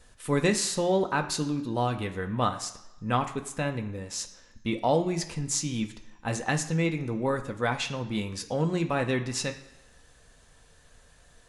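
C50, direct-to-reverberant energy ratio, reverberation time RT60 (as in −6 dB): 12.0 dB, 4.0 dB, 1.0 s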